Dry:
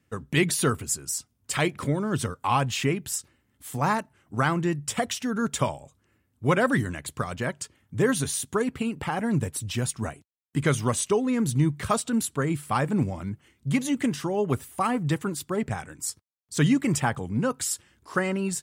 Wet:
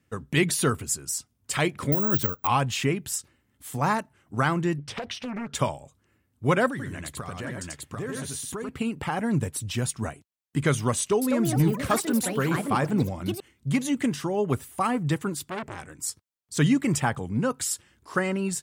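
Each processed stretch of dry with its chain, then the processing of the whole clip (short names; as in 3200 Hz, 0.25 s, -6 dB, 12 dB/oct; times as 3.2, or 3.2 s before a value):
1.92–2.47 air absorption 57 m + careless resampling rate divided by 2×, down filtered, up zero stuff
4.78–5.55 polynomial smoothing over 15 samples + compressor 12:1, threshold -28 dBFS + Doppler distortion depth 0.81 ms
6.68–8.69 tapped delay 89/741 ms -4/-4 dB + compressor 4:1, threshold -31 dBFS
10.98–13.9 hard clip -15 dBFS + echoes that change speed 0.235 s, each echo +5 st, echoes 3, each echo -6 dB
15.44–15.99 short-mantissa float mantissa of 8-bit + core saturation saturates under 2300 Hz
whole clip: dry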